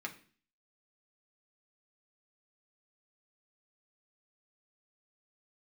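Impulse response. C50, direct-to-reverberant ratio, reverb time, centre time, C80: 14.0 dB, 0.0 dB, 0.45 s, 10 ms, 18.0 dB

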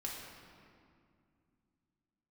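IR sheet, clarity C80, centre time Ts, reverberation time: 2.5 dB, 93 ms, 2.3 s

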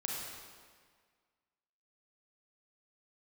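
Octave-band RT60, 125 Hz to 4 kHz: 1.6, 1.7, 1.7, 1.7, 1.6, 1.4 seconds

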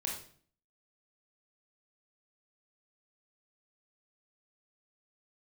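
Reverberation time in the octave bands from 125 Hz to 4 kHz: 0.60, 0.65, 0.55, 0.45, 0.45, 0.45 seconds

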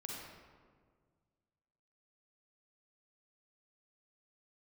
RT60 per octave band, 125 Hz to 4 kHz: 2.4, 2.1, 1.9, 1.6, 1.3, 0.90 seconds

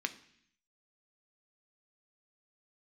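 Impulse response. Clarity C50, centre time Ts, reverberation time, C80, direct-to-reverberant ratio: 15.5 dB, 5 ms, 0.65 s, 18.5 dB, 8.0 dB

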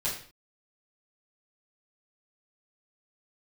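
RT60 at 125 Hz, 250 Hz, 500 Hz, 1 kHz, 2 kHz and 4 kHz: 0.45 s, 0.50 s, 0.45 s, 0.45 s, can't be measured, 0.45 s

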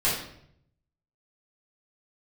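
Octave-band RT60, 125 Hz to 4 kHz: 1.2, 0.85, 0.75, 0.65, 0.60, 0.55 seconds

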